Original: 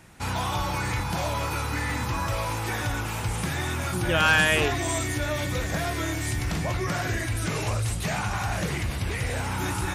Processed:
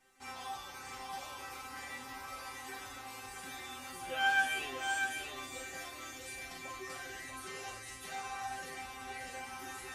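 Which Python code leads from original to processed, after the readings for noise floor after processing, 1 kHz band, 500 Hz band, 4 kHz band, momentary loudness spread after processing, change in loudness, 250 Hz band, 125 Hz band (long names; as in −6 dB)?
−48 dBFS, −10.5 dB, −18.0 dB, −12.0 dB, 11 LU, −13.0 dB, −22.0 dB, −32.5 dB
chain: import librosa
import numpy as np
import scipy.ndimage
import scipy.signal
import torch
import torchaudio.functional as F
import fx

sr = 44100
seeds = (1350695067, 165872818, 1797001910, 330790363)

y = fx.low_shelf(x, sr, hz=210.0, db=-12.0)
y = fx.resonator_bank(y, sr, root=60, chord='fifth', decay_s=0.34)
y = y + 10.0 ** (-5.5 / 20.0) * np.pad(y, (int(641 * sr / 1000.0), 0))[:len(y)]
y = y * 10.0 ** (4.0 / 20.0)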